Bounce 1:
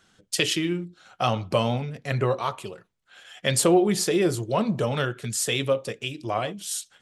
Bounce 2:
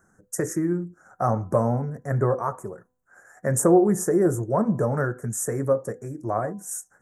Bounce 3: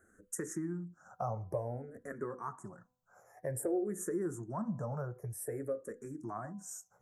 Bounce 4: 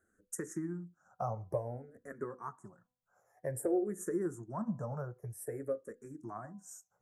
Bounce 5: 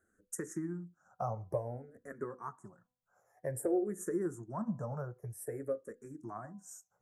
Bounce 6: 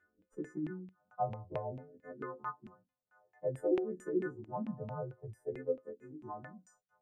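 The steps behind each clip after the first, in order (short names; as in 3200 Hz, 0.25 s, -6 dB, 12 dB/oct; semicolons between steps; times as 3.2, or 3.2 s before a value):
elliptic band-stop 1700–6200 Hz, stop band 60 dB; bell 3900 Hz -10 dB 1.6 oct; de-hum 251.4 Hz, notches 4; gain +2.5 dB
compressor 2:1, threshold -40 dBFS, peak gain reduction 15 dB; endless phaser -0.53 Hz; gain -1.5 dB
upward expander 1.5:1, over -54 dBFS; gain +2.5 dB
nothing audible
frequency quantiser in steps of 3 st; added harmonics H 2 -23 dB, 4 -36 dB, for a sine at -17.5 dBFS; LFO low-pass saw down 4.5 Hz 220–2600 Hz; gain -3 dB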